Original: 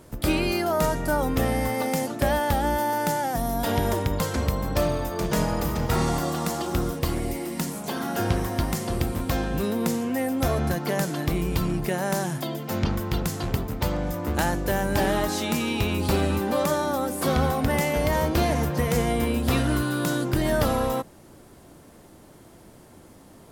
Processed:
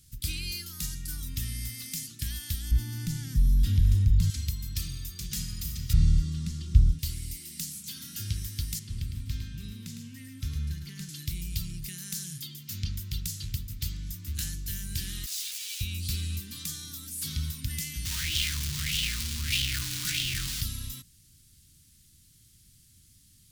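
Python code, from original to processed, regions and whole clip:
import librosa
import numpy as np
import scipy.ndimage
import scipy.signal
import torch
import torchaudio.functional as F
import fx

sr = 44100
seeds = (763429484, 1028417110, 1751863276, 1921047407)

y = fx.chain(x, sr, fx.tilt_eq(slope=-3.5),
    fx.clip_hard(threshold_db=-9.5),
    fx.env_flatten(amount_pct=50), at=(2.71, 4.3))
y = fx.chain(y, sr, fx.lowpass(hz=12000.0, slope=12),
    fx.riaa(side='playback'), at=(5.93, 6.99))
y = fx.chain(y, sr, fx.lowpass(hz=2000.0, slope=6),
    fx.echo_single(ms=107, db=-6.0), at=(8.79, 11.09))
y = fx.chain(y, sr, fx.clip_1bit(),
    fx.highpass(hz=900.0, slope=12),
    fx.ensemble(), at=(15.26, 15.81))
y = fx.chain(y, sr, fx.schmitt(flips_db=-37.0),
    fx.bell_lfo(hz=1.6, low_hz=740.0, high_hz=3100.0, db=16), at=(18.05, 20.61))
y = scipy.signal.sosfilt(scipy.signal.cheby1(2, 1.0, [100.0, 4300.0], 'bandstop', fs=sr, output='sos'), y)
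y = fx.low_shelf(y, sr, hz=430.0, db=-5.0)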